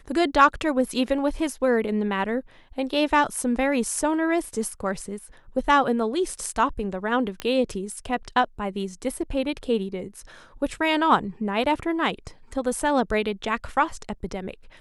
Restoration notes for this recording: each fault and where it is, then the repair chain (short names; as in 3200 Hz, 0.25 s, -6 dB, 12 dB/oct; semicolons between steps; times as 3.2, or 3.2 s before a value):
7.4 pop -14 dBFS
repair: de-click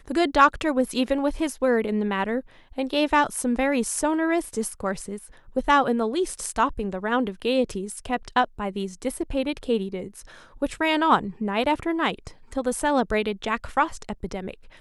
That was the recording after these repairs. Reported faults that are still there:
none